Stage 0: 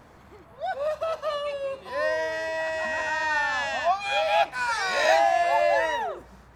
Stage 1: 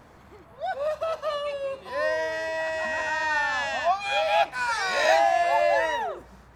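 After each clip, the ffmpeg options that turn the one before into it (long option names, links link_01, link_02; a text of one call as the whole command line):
ffmpeg -i in.wav -af anull out.wav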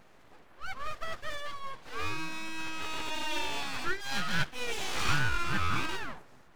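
ffmpeg -i in.wav -af "aeval=exprs='abs(val(0))':channel_layout=same,volume=-5dB" out.wav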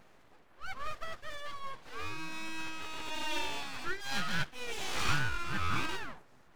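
ffmpeg -i in.wav -af "tremolo=f=1.2:d=0.38,volume=-1.5dB" out.wav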